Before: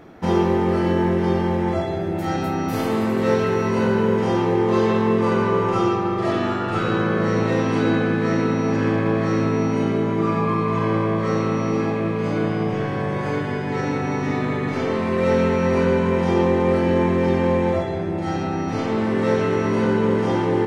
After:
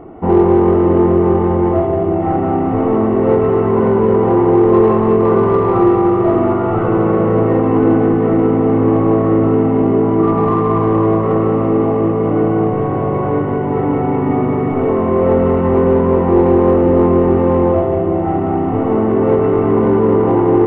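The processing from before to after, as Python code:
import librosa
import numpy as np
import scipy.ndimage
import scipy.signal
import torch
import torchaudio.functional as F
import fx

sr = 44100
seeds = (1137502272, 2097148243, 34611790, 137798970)

p1 = fx.cvsd(x, sr, bps=16000)
p2 = scipy.signal.savgol_filter(p1, 65, 4, mode='constant')
p3 = p2 + 0.36 * np.pad(p2, (int(2.7 * sr / 1000.0), 0))[:len(p2)]
p4 = 10.0 ** (-20.0 / 20.0) * np.tanh(p3 / 10.0 ** (-20.0 / 20.0))
p5 = p3 + (p4 * librosa.db_to_amplitude(-4.5))
p6 = fx.echo_thinned(p5, sr, ms=180, feedback_pct=76, hz=420.0, wet_db=-10.0)
y = p6 * librosa.db_to_amplitude(5.5)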